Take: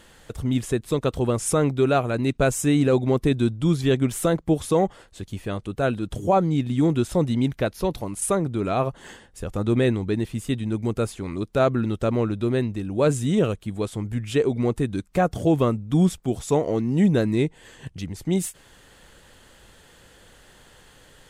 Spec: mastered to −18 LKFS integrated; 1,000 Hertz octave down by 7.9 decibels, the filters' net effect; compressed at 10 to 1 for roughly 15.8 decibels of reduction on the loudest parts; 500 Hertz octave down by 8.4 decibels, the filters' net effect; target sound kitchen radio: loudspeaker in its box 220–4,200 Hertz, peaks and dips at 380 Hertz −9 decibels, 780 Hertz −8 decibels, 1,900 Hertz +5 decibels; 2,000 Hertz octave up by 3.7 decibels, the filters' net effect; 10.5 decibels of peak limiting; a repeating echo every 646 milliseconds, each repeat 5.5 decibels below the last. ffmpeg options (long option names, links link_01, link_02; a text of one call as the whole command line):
ffmpeg -i in.wav -af "equalizer=frequency=500:width_type=o:gain=-3.5,equalizer=frequency=1000:width_type=o:gain=-7.5,equalizer=frequency=2000:width_type=o:gain=5,acompressor=threshold=-32dB:ratio=10,alimiter=level_in=7dB:limit=-24dB:level=0:latency=1,volume=-7dB,highpass=220,equalizer=frequency=380:width_type=q:width=4:gain=-9,equalizer=frequency=780:width_type=q:width=4:gain=-8,equalizer=frequency=1900:width_type=q:width=4:gain=5,lowpass=frequency=4200:width=0.5412,lowpass=frequency=4200:width=1.3066,aecho=1:1:646|1292|1938|2584|3230|3876|4522:0.531|0.281|0.149|0.079|0.0419|0.0222|0.0118,volume=26.5dB" out.wav